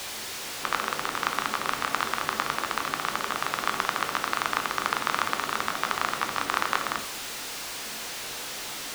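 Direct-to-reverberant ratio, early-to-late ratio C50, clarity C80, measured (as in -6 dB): 6.5 dB, 12.0 dB, 15.5 dB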